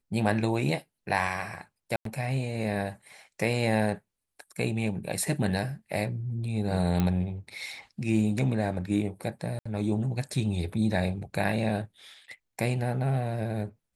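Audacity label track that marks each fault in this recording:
1.960000	2.050000	drop-out 93 ms
7.000000	7.000000	click −14 dBFS
9.590000	9.650000	drop-out 65 ms

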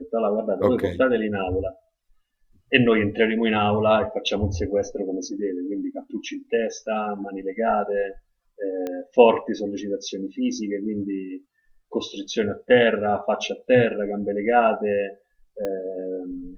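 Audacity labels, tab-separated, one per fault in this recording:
8.870000	8.870000	click −17 dBFS
15.650000	15.650000	click −16 dBFS

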